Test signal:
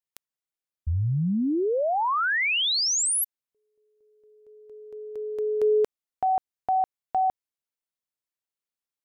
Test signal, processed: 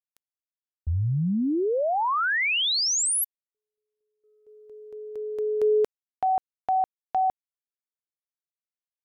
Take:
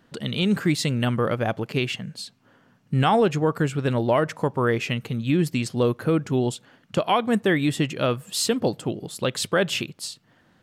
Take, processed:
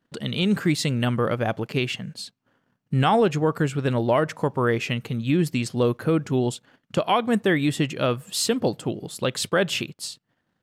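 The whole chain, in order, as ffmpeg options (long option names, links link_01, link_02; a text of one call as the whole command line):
ffmpeg -i in.wav -af "agate=range=-17dB:threshold=-54dB:ratio=3:release=22:detection=peak" out.wav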